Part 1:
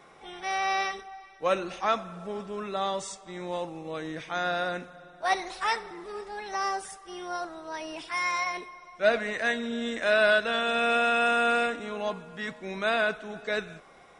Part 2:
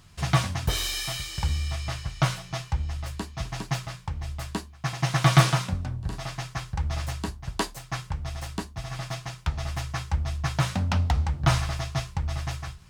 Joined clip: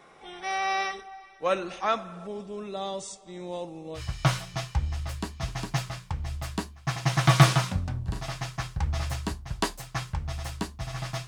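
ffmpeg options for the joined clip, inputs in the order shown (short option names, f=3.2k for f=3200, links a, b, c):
-filter_complex "[0:a]asettb=1/sr,asplit=3[a][b][c];[a]atrim=end=2.274[d];[b]atrim=start=2.27:end=4.02,asetpts=PTS-STARTPTS,afade=t=in:d=0.004:c=qsin,afade=t=out:st=1.746:d=0.004:c=qsin,equalizer=f=1.5k:t=o:w=1.4:g=-11.5[e];[c]atrim=start=4.016[f];[d][e]acrossfade=d=0.004:c1=hsin:c2=qsin[g];[g][f]acrossfade=d=0.004:c1=qsin:c2=hsin,apad=whole_dur=11.27,atrim=end=11.27,atrim=end=4.02,asetpts=PTS-STARTPTS[h];[1:a]atrim=start=1.91:end=9.24,asetpts=PTS-STARTPTS[i];[h][i]acrossfade=d=0.08:c1=tri:c2=tri"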